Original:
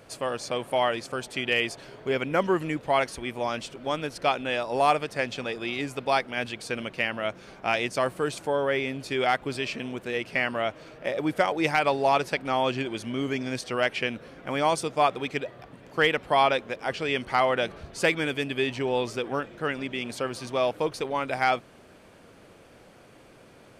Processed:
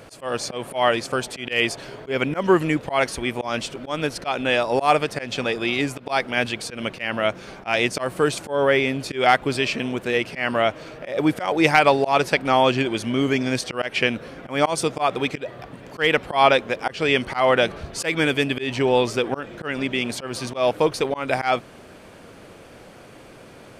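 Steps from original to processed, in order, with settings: auto swell 0.152 s; gain +8 dB

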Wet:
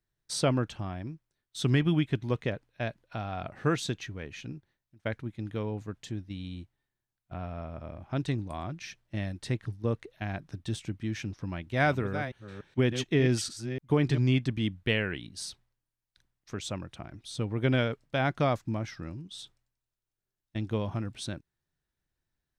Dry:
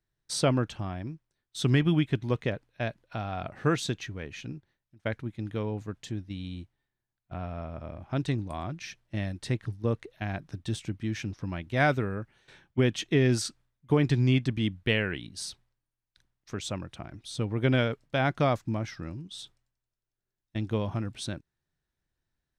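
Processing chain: 11.44–14.18 reverse delay 0.293 s, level -9.5 dB; gain -1.5 dB

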